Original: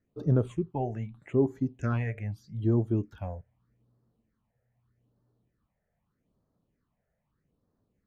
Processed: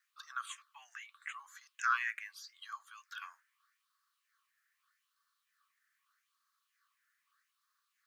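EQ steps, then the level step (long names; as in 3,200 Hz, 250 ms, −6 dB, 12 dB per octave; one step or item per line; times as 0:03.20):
dynamic equaliser 2,300 Hz, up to −5 dB, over −54 dBFS, Q 1.4
Chebyshev high-pass with heavy ripple 1,100 Hz, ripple 3 dB
+12.5 dB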